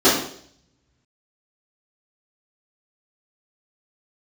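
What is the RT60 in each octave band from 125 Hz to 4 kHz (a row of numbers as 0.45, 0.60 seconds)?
1.9, 0.65, 0.65, 0.55, 0.55, 0.65 seconds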